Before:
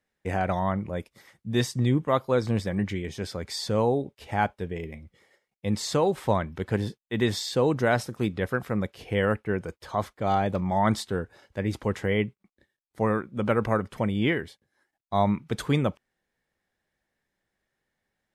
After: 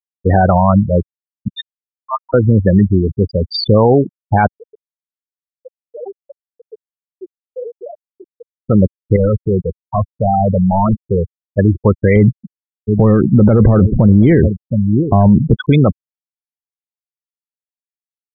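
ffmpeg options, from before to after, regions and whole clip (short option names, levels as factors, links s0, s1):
-filter_complex "[0:a]asettb=1/sr,asplit=3[s0][s1][s2];[s0]atrim=end=1.484[s3];[s1]atrim=start=1.48:end=2.34,asetpts=PTS-STARTPTS,afade=t=in:d=0.004:c=qsin,afade=t=out:st=0.856:d=0.004:c=qsin,highpass=f=840:t=q:w=4.2,aderivative,acrusher=bits=8:mode=log:mix=0:aa=0.000001[s4];[s2]atrim=start=2.336[s5];[s3][s4]acrossfade=d=0.004:c1=hsin:c2=qsin[s6];[s6][s5]acrossfade=d=0.004:c1=qsin:c2=hsin,asettb=1/sr,asplit=3[s7][s8][s9];[s7]atrim=end=4.574[s10];[s8]atrim=start=4.57:end=8.64,asetpts=PTS-STARTPTS,afade=t=in:d=0.004:c=qsin,afade=t=out:st=4.066:d=0.004:c=qsin,highpass=460,acompressor=threshold=0.00708:ratio=3:attack=3.2:release=140:knee=1:detection=peak[s11];[s9]atrim=start=8.636[s12];[s10][s11]acrossfade=d=0.004:c1=hsin:c2=qsin[s13];[s13][s12]acrossfade=d=0.004:c1=qsin:c2=hsin,asettb=1/sr,asplit=3[s14][s15][s16];[s14]atrim=end=9.164[s17];[s15]atrim=start=9.16:end=11.59,asetpts=PTS-STARTPTS,afade=t=in:d=0.004:c=qsin,afade=t=out:st=2.426:d=0.004:c=qsin,lowpass=f=1600:w=0.5412,lowpass=f=1600:w=1.3066,volume=28.2,asoftclip=hard,volume=0.0355[s18];[s16]atrim=start=11.586[s19];[s17][s18]acrossfade=d=0.004:c1=hsin:c2=qsin[s20];[s20][s19]acrossfade=d=0.004:c1=qsin:c2=hsin,asettb=1/sr,asplit=3[s21][s22][s23];[s21]atrim=end=12.164[s24];[s22]atrim=start=12.16:end=15.54,asetpts=PTS-STARTPTS,afade=t=in:d=0.004:c=qsin,afade=t=out:st=3.376:d=0.004:c=qsin,aecho=1:1:719:0.0841,atrim=end_sample=149058,aeval=exprs='0.335*sin(PI/2*1.58*val(0)/0.335)':c=same,tiltshelf=f=690:g=8.5[s25];[s23]atrim=start=15.536[s26];[s24][s25]acrossfade=d=0.004:c1=hsin:c2=qsin[s27];[s27][s26]acrossfade=d=0.004:c1=qsin:c2=hsin,afftfilt=real='re*gte(hypot(re,im),0.0794)':imag='im*gte(hypot(re,im),0.0794)':win_size=1024:overlap=0.75,lowshelf=f=120:g=5,alimiter=level_in=8.91:limit=0.891:release=50:level=0:latency=1,volume=0.891"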